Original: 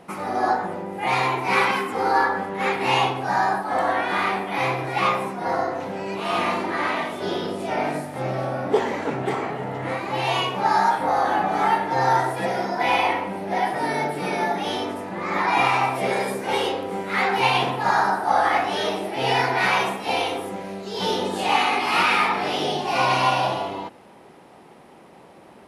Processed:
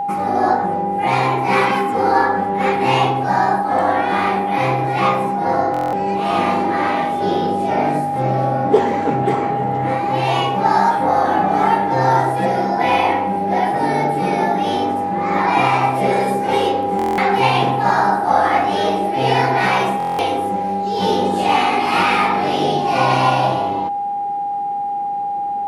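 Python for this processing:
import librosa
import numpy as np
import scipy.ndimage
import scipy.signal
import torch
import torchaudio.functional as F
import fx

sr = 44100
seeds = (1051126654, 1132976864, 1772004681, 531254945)

y = fx.tilt_shelf(x, sr, db=4.5, hz=650.0)
y = y + 10.0 ** (-24.0 / 20.0) * np.sin(2.0 * np.pi * 810.0 * np.arange(len(y)) / sr)
y = fx.buffer_glitch(y, sr, at_s=(5.72, 16.97, 19.98), block=1024, repeats=8)
y = y * librosa.db_to_amplitude(5.0)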